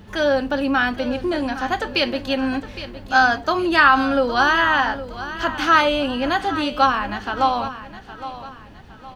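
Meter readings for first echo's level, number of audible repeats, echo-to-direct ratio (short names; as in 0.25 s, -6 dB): -13.5 dB, 3, -13.0 dB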